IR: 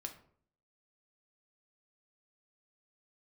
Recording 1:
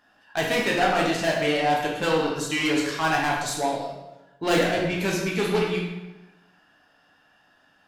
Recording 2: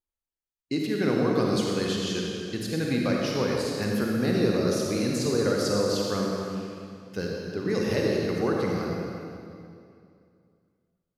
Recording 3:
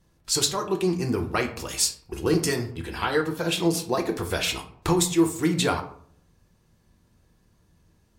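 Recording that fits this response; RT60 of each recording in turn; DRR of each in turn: 3; 1.1, 2.5, 0.55 seconds; −3.0, −2.0, 3.5 decibels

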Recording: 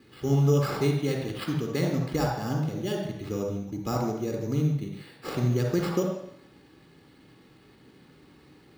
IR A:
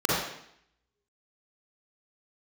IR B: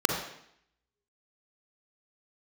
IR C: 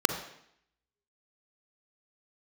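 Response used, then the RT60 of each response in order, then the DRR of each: B; 0.70, 0.70, 0.70 seconds; −8.5, 0.5, 5.5 decibels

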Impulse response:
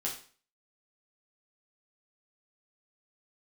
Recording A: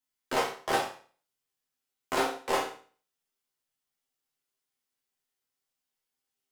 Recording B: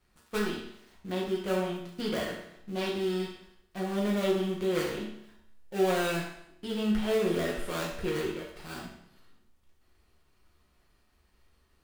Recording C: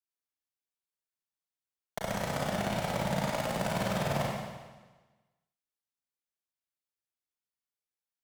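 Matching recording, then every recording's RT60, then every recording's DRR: A; 0.40, 0.75, 1.3 seconds; −3.5, −4.5, −4.0 decibels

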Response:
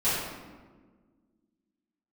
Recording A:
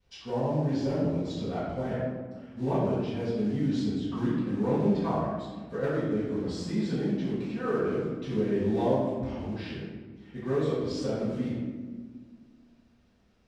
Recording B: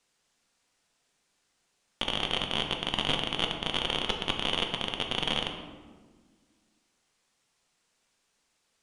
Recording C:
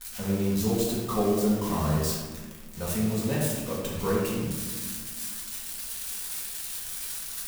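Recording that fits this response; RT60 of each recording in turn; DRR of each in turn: A; 1.5, 1.5, 1.5 seconds; −14.5, 3.0, −6.5 decibels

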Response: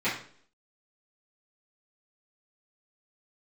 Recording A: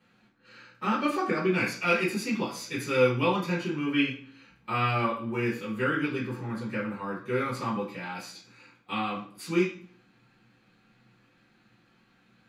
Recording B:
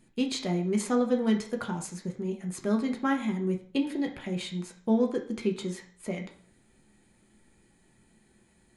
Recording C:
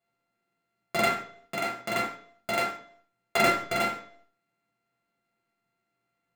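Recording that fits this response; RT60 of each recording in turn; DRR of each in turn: A; 0.55, 0.55, 0.55 seconds; −13.0, 1.5, −5.5 decibels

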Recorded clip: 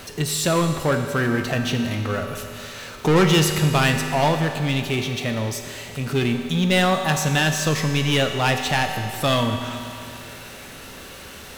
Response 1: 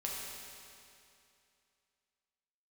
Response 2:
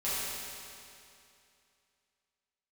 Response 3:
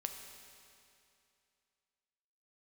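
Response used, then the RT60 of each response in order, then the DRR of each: 3; 2.6, 2.6, 2.6 seconds; −4.0, −12.5, 4.5 decibels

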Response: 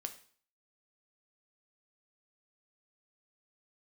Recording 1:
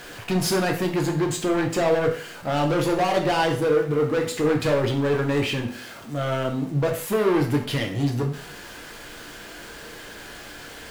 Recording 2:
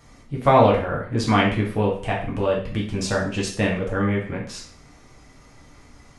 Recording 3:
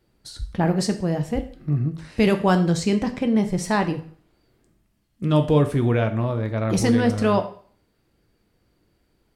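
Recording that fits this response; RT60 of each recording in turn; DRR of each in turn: 3; 0.50, 0.50, 0.50 seconds; 1.5, −3.5, 6.5 decibels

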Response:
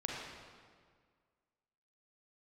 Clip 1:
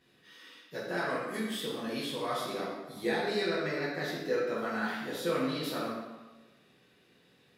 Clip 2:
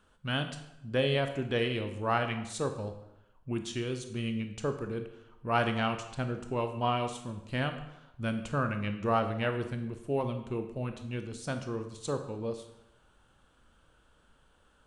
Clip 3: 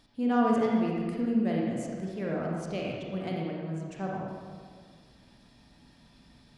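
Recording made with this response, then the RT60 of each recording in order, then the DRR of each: 3; 1.2, 0.90, 1.8 seconds; −8.5, 6.5, −3.0 decibels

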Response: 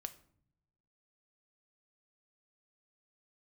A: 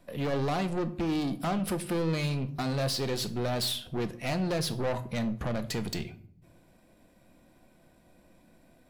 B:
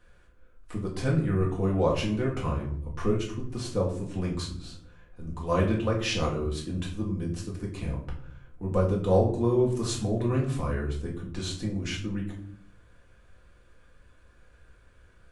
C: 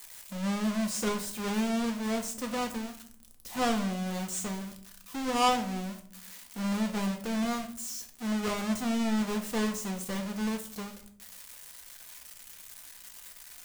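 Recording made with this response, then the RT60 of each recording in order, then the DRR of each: A; 0.60, 0.60, 0.60 seconds; 9.0, −3.5, 3.5 decibels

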